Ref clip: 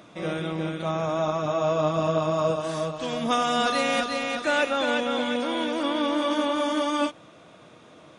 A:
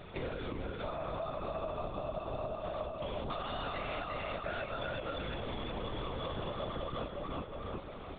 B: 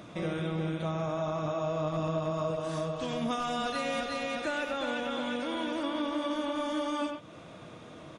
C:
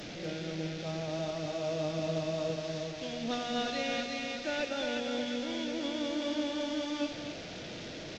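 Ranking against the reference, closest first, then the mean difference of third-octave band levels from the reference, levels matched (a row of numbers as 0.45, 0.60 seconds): B, C, A; 3.0, 6.0, 10.5 decibels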